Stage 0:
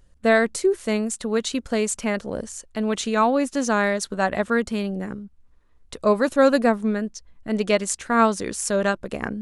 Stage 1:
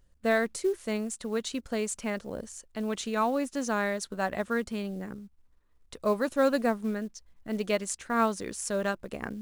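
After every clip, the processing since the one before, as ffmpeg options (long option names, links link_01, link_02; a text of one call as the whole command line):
ffmpeg -i in.wav -af "acrusher=bits=7:mode=log:mix=0:aa=0.000001,volume=-8dB" out.wav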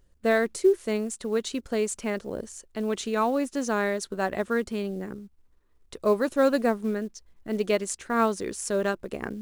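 ffmpeg -i in.wav -af "equalizer=frequency=380:width=2.7:gain=6.5,volume=1.5dB" out.wav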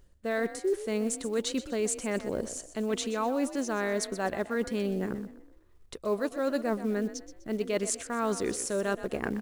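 ffmpeg -i in.wav -filter_complex "[0:a]areverse,acompressor=threshold=-30dB:ratio=6,areverse,asplit=5[link_01][link_02][link_03][link_04][link_05];[link_02]adelay=125,afreqshift=38,volume=-13.5dB[link_06];[link_03]adelay=250,afreqshift=76,volume=-22.1dB[link_07];[link_04]adelay=375,afreqshift=114,volume=-30.8dB[link_08];[link_05]adelay=500,afreqshift=152,volume=-39.4dB[link_09];[link_01][link_06][link_07][link_08][link_09]amix=inputs=5:normalize=0,volume=3.5dB" out.wav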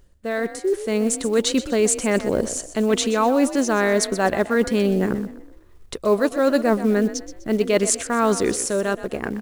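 ffmpeg -i in.wav -af "dynaudnorm=framelen=210:gausssize=9:maxgain=6dB,volume=5dB" out.wav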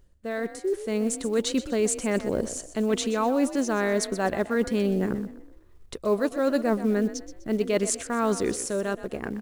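ffmpeg -i in.wav -af "lowshelf=frequency=420:gain=3,volume=-7dB" out.wav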